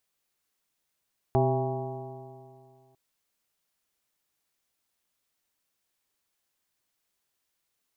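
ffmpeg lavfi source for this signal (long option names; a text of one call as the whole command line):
ffmpeg -f lavfi -i "aevalsrc='0.0708*pow(10,-3*t/2.31)*sin(2*PI*128.19*t)+0.0282*pow(10,-3*t/2.31)*sin(2*PI*257.53*t)+0.0631*pow(10,-3*t/2.31)*sin(2*PI*389.15*t)+0.00794*pow(10,-3*t/2.31)*sin(2*PI*524.14*t)+0.0473*pow(10,-3*t/2.31)*sin(2*PI*663.57*t)+0.0473*pow(10,-3*t/2.31)*sin(2*PI*808.41*t)+0.0126*pow(10,-3*t/2.31)*sin(2*PI*959.6*t)+0.00708*pow(10,-3*t/2.31)*sin(2*PI*1117.99*t)':duration=1.6:sample_rate=44100" out.wav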